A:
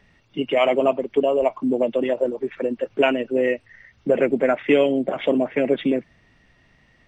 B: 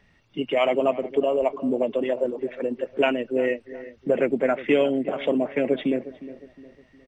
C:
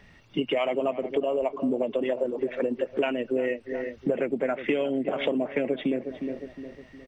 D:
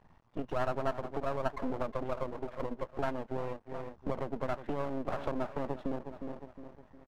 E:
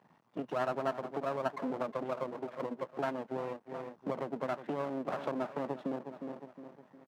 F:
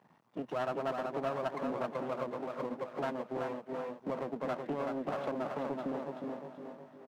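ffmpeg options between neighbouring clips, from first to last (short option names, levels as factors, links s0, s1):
-filter_complex "[0:a]asplit=2[s0][s1];[s1]adelay=359,lowpass=f=1400:p=1,volume=0.178,asplit=2[s2][s3];[s3]adelay=359,lowpass=f=1400:p=1,volume=0.41,asplit=2[s4][s5];[s5]adelay=359,lowpass=f=1400:p=1,volume=0.41,asplit=2[s6][s7];[s7]adelay=359,lowpass=f=1400:p=1,volume=0.41[s8];[s0][s2][s4][s6][s8]amix=inputs=5:normalize=0,volume=0.708"
-af "acompressor=threshold=0.0316:ratio=6,volume=2.11"
-af "highshelf=f=1600:t=q:w=3:g=-12,aecho=1:1:1.2:0.41,aeval=exprs='max(val(0),0)':c=same,volume=0.596"
-af "highpass=f=150:w=0.5412,highpass=f=150:w=1.3066"
-filter_complex "[0:a]asplit=2[s0][s1];[s1]aecho=0:1:379|758|1137|1516:0.562|0.197|0.0689|0.0241[s2];[s0][s2]amix=inputs=2:normalize=0,asoftclip=type=tanh:threshold=0.0562"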